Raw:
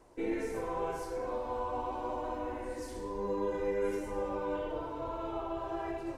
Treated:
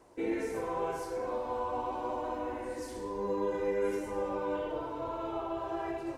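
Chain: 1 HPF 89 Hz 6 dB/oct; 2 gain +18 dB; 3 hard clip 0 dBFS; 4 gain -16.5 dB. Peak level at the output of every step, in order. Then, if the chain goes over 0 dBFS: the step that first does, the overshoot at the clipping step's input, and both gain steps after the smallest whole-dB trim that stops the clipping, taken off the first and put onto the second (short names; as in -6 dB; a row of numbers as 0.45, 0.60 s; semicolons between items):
-22.5, -4.5, -4.5, -21.0 dBFS; no overload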